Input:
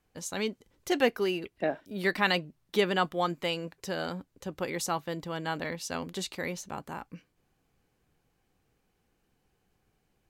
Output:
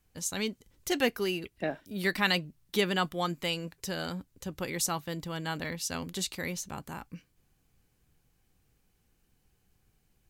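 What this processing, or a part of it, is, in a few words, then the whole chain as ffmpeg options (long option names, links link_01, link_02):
smiley-face EQ: -af "lowshelf=frequency=140:gain=7,equalizer=frequency=590:width_type=o:width=2.4:gain=-4.5,highshelf=frequency=5700:gain=8"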